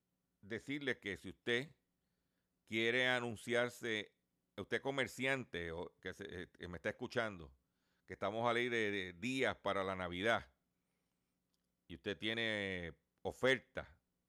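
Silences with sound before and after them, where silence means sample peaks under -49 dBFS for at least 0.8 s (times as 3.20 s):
1.65–2.71 s
10.43–11.90 s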